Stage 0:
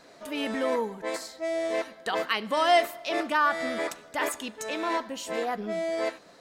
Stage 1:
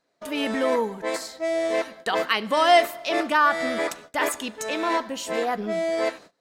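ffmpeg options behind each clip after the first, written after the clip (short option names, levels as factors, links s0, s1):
-af "agate=range=0.0562:threshold=0.00447:ratio=16:detection=peak,volume=1.68"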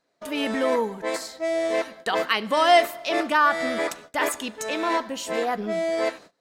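-af anull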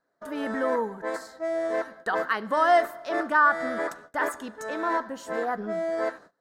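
-af "highshelf=f=2000:t=q:w=3:g=-7,volume=0.631"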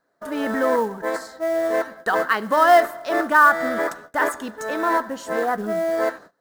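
-af "acrusher=bits=6:mode=log:mix=0:aa=0.000001,volume=2"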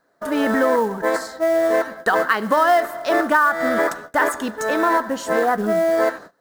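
-af "acompressor=threshold=0.1:ratio=4,volume=2"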